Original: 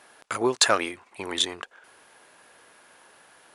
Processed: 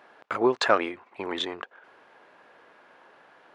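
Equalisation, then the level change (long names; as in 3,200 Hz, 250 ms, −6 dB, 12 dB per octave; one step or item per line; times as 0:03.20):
high-pass filter 270 Hz 6 dB per octave
head-to-tape spacing loss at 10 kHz 33 dB
+5.0 dB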